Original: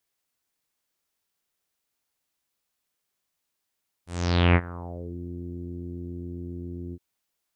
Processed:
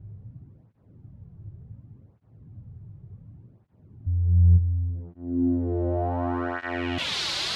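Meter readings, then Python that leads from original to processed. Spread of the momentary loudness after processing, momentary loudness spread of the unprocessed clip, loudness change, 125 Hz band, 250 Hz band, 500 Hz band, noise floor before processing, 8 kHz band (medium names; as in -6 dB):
24 LU, 16 LU, +4.5 dB, +6.0 dB, +4.0 dB, +3.0 dB, -81 dBFS, no reading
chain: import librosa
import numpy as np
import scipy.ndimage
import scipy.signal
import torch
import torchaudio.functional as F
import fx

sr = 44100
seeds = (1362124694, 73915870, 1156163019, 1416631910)

p1 = fx.delta_mod(x, sr, bps=64000, step_db=-21.5)
p2 = fx.rider(p1, sr, range_db=10, speed_s=0.5)
p3 = p1 + F.gain(torch.from_numpy(p2), -1.5).numpy()
p4 = fx.filter_sweep_lowpass(p3, sr, from_hz=110.0, to_hz=4100.0, start_s=4.87, end_s=7.18, q=3.0)
p5 = fx.flanger_cancel(p4, sr, hz=0.68, depth_ms=4.5)
y = F.gain(torch.from_numpy(p5), -3.5).numpy()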